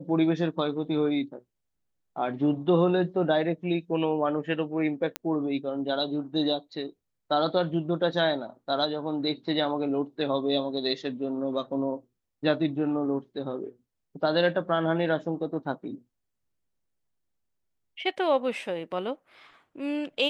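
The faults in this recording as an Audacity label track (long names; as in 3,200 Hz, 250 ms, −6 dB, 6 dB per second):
5.160000	5.160000	click −13 dBFS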